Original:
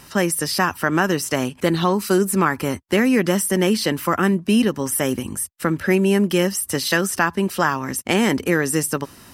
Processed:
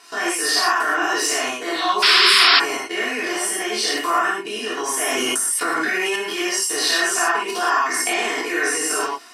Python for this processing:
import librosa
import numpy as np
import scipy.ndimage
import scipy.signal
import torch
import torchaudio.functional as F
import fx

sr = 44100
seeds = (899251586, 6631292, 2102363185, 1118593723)

y = fx.spec_dilate(x, sr, span_ms=60)
y = fx.level_steps(y, sr, step_db=24)
y = y + 0.89 * np.pad(y, (int(2.8 * sr / 1000.0), 0))[:len(y)]
y = fx.clip_hard(y, sr, threshold_db=-16.0, at=(1.08, 1.54))
y = fx.bandpass_edges(y, sr, low_hz=620.0, high_hz=7800.0)
y = fx.rev_gated(y, sr, seeds[0], gate_ms=140, shape='flat', drr_db=-5.5)
y = fx.spec_paint(y, sr, seeds[1], shape='noise', start_s=2.02, length_s=0.58, low_hz=970.0, high_hz=5500.0, level_db=-12.0)
y = fx.env_flatten(y, sr, amount_pct=100, at=(5.01, 6.16))
y = y * 10.0 ** (-1.5 / 20.0)